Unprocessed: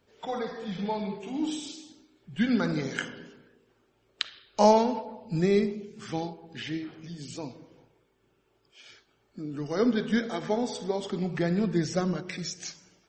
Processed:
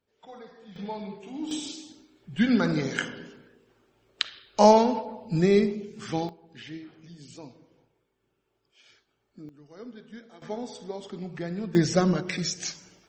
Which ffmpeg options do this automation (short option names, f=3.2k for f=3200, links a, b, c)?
-af "asetnsamples=n=441:p=0,asendcmd='0.76 volume volume -4.5dB;1.51 volume volume 3dB;6.29 volume volume -6.5dB;9.49 volume volume -18.5dB;10.42 volume volume -6.5dB;11.75 volume volume 5.5dB',volume=-13dB"